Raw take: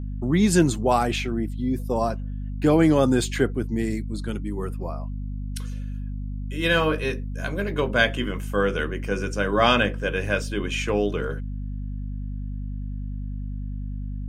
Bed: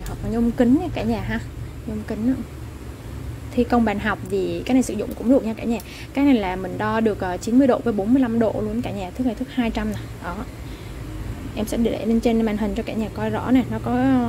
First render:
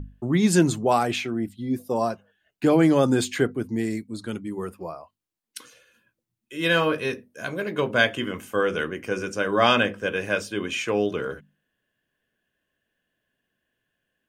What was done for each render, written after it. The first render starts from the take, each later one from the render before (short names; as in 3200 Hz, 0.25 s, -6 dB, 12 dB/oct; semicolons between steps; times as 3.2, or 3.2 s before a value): notches 50/100/150/200/250 Hz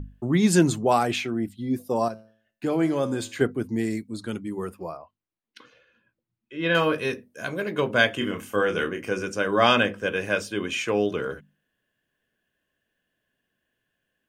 2.08–3.41 resonator 110 Hz, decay 0.54 s; 4.97–6.75 air absorption 260 m; 8.18–9.11 doubler 29 ms -7 dB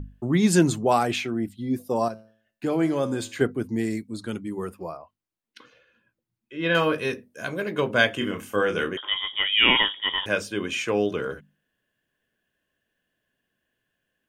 8.97–10.26 inverted band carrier 3500 Hz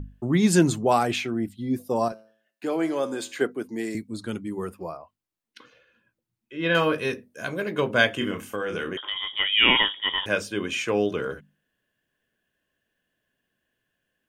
2.12–3.95 HPF 310 Hz; 8.5–9.39 compressor, threshold -25 dBFS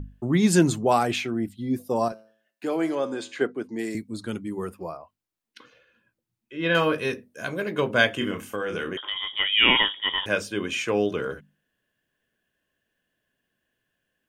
2.95–3.79 air absorption 69 m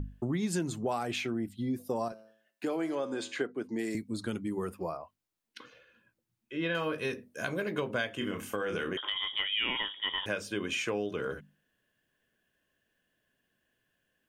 compressor 5:1, threshold -30 dBFS, peak gain reduction 15.5 dB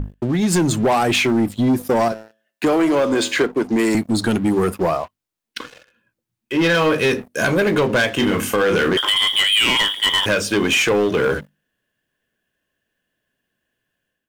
AGC gain up to 8 dB; sample leveller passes 3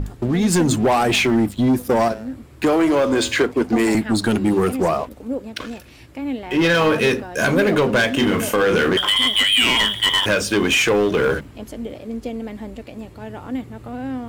add bed -9.5 dB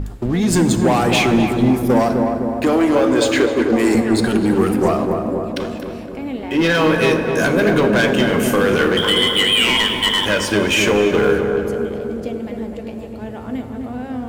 darkening echo 0.256 s, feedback 68%, low-pass 1100 Hz, level -3.5 dB; plate-style reverb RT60 2.8 s, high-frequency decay 0.55×, DRR 9 dB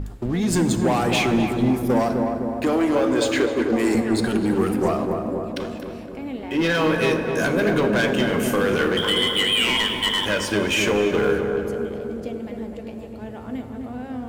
gain -5 dB